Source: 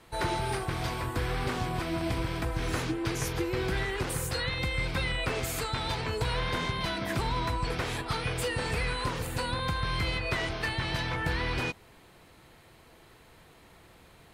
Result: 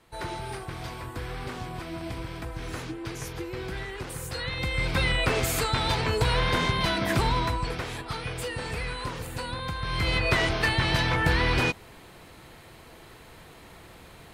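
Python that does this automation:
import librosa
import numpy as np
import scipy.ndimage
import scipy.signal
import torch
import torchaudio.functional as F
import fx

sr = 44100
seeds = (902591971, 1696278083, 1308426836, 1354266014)

y = fx.gain(x, sr, db=fx.line((4.14, -4.5), (5.05, 6.0), (7.27, 6.0), (7.88, -2.0), (9.79, -2.0), (10.19, 7.0)))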